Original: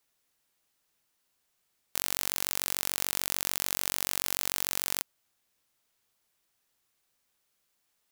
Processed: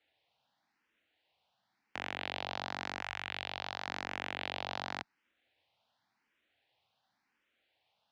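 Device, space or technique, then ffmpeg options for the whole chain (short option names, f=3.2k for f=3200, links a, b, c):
barber-pole phaser into a guitar amplifier: -filter_complex "[0:a]asettb=1/sr,asplit=3[a][b][c];[a]atrim=end=3.014[d];[b]atrim=start=3.01:end=3.87,asetpts=PTS-STARTPTS,afade=t=in:d=0.004:c=qsin,afade=t=out:st=0.856:d=0.004:c=qsin,equalizer=f=270:w=0.66:g=-9[e];[c]atrim=start=3.866[f];[d][e]acrossfade=d=0.004:c1=hsin:c2=qsin[g];[g][f]acrossfade=d=0.004:c1=qsin:c2=hsin,asplit=2[h][i];[i]afreqshift=0.92[j];[h][j]amix=inputs=2:normalize=1,asoftclip=type=tanh:threshold=-20.5dB,highpass=100,equalizer=f=160:t=q:w=4:g=-6,equalizer=f=400:t=q:w=4:g=-8,equalizer=f=780:t=q:w=4:g=5,equalizer=f=1.2k:t=q:w=4:g=-6,lowpass=f=3.7k:w=0.5412,lowpass=f=3.7k:w=1.3066,volume=7.5dB"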